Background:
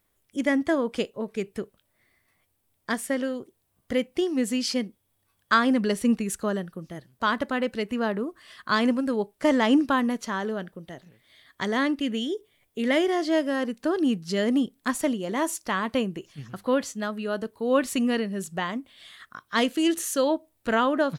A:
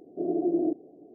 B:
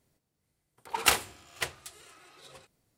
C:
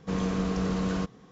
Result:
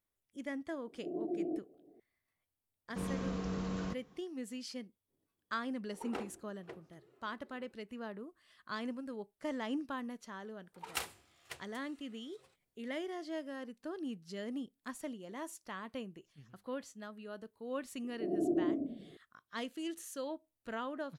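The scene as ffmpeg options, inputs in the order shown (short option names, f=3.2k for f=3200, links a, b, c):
-filter_complex "[1:a]asplit=2[a][b];[2:a]asplit=2[c][d];[0:a]volume=-17.5dB[e];[c]bandpass=f=330:t=q:w=2:csg=0[f];[b]asplit=6[g][h][i][j][k][l];[h]adelay=105,afreqshift=-40,volume=-5.5dB[m];[i]adelay=210,afreqshift=-80,volume=-13.9dB[n];[j]adelay=315,afreqshift=-120,volume=-22.3dB[o];[k]adelay=420,afreqshift=-160,volume=-30.7dB[p];[l]adelay=525,afreqshift=-200,volume=-39.1dB[q];[g][m][n][o][p][q]amix=inputs=6:normalize=0[r];[a]atrim=end=1.14,asetpts=PTS-STARTPTS,volume=-11dB,afade=t=in:d=0.004:c=hsin,afade=t=out:st=1.136:d=0.004:c=hsin,adelay=860[s];[3:a]atrim=end=1.31,asetpts=PTS-STARTPTS,volume=-9.5dB,afade=t=in:d=0.004:c=hsin,afade=t=out:st=1.306:d=0.004:c=hsin,adelay=2880[t];[f]atrim=end=2.97,asetpts=PTS-STARTPTS,volume=-2dB,afade=t=in:d=0.05,afade=t=out:st=2.92:d=0.05,adelay=5070[u];[d]atrim=end=2.97,asetpts=PTS-STARTPTS,volume=-15dB,afade=t=in:d=0.004:c=hsin,afade=t=out:st=2.966:d=0.004:c=hsin,adelay=9890[v];[r]atrim=end=1.14,asetpts=PTS-STARTPTS,volume=-7dB,afade=t=in:d=0.004:c=hsin,afade=t=out:st=1.136:d=0.004:c=hsin,adelay=18030[w];[e][s][t][u][v][w]amix=inputs=6:normalize=0"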